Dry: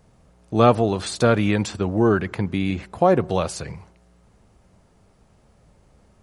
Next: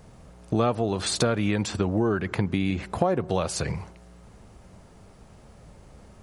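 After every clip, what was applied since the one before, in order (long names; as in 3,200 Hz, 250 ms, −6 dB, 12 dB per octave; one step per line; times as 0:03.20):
downward compressor 4 to 1, threshold −29 dBFS, peak gain reduction 16.5 dB
level +6.5 dB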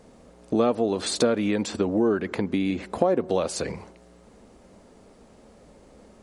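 octave-band graphic EQ 125/250/500/1,000/2,000/4,000/8,000 Hz −6/+11/+9/+3/+4/+5/+6 dB
level −7.5 dB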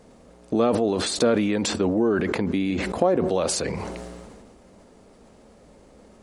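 level that may fall only so fast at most 27 dB per second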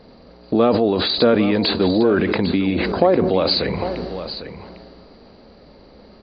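hearing-aid frequency compression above 3,800 Hz 4 to 1
single-tap delay 802 ms −11.5 dB
level +5 dB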